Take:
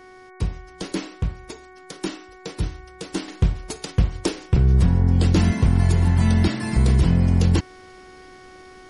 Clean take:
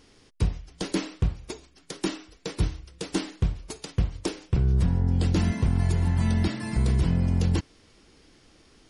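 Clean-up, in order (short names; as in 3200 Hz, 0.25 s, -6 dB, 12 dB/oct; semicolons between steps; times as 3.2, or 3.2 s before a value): de-hum 370.6 Hz, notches 6; gain 0 dB, from 3.28 s -6 dB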